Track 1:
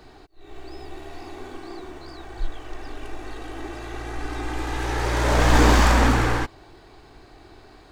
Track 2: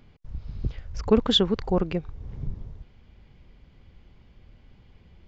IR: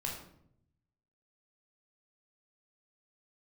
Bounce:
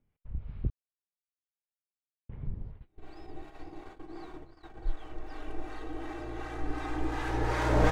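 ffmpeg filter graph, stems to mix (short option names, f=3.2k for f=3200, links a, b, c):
-filter_complex "[0:a]highshelf=f=2.7k:g=-10,aecho=1:1:6.4:0.44,adelay=2450,volume=-2.5dB[a];[1:a]lowpass=f=2.8k:w=0.5412,lowpass=f=2.8k:w=1.3066,volume=-1dB,asplit=3[b][c][d];[b]atrim=end=0.7,asetpts=PTS-STARTPTS,afade=t=out:st=0.696:d=0.004:c=hsin[e];[c]atrim=start=0.7:end=2.29,asetpts=PTS-STARTPTS,volume=0[f];[d]atrim=start=2.29,asetpts=PTS-STARTPTS,afade=t=in:d=0.004:c=hsin[g];[e][f][g]concat=n=3:v=0:a=1,asplit=2[h][i];[i]apad=whole_len=457592[j];[a][j]sidechaincompress=threshold=-52dB:ratio=5:attack=26:release=253[k];[k][h]amix=inputs=2:normalize=0,agate=range=-20dB:threshold=-41dB:ratio=16:detection=peak,acrossover=split=680[l][m];[l]aeval=exprs='val(0)*(1-0.5/2+0.5/2*cos(2*PI*2.7*n/s))':c=same[n];[m]aeval=exprs='val(0)*(1-0.5/2-0.5/2*cos(2*PI*2.7*n/s))':c=same[o];[n][o]amix=inputs=2:normalize=0"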